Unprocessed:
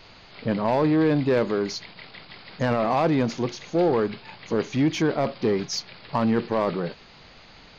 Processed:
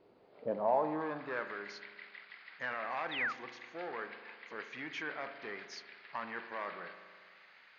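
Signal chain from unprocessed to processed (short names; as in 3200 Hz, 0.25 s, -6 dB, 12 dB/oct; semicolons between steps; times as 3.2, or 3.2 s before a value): spring tank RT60 1.8 s, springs 39 ms, chirp 35 ms, DRR 8.5 dB; painted sound fall, 3.11–3.33, 1100–4000 Hz -28 dBFS; band-pass sweep 390 Hz -> 1800 Hz, 0.13–1.57; gain -4 dB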